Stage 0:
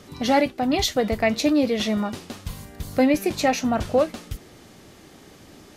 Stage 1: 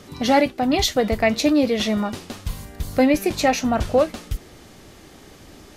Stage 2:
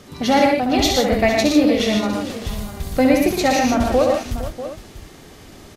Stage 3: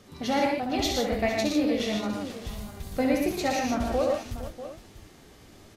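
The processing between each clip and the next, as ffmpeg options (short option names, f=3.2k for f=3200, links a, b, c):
-af "asubboost=boost=2:cutoff=87,volume=2.5dB"
-af "aecho=1:1:66|117|150|458|641|708:0.562|0.596|0.473|0.178|0.211|0.141"
-af "flanger=delay=9:depth=8.5:regen=63:speed=1.4:shape=sinusoidal,volume=-5.5dB"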